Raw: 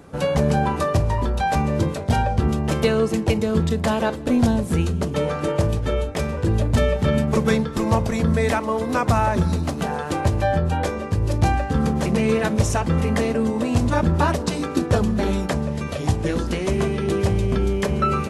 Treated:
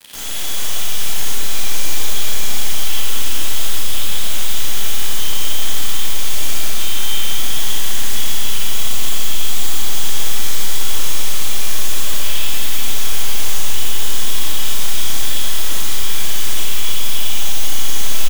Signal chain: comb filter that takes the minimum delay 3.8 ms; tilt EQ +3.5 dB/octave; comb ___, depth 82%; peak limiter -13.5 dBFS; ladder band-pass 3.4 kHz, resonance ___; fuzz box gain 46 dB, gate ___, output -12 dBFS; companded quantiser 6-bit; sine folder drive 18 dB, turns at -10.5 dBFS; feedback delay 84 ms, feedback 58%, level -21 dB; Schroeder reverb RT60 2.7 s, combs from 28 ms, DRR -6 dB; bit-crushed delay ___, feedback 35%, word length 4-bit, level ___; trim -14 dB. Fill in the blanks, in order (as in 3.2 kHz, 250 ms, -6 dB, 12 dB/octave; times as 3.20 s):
3 ms, 85%, -53 dBFS, 602 ms, -12.5 dB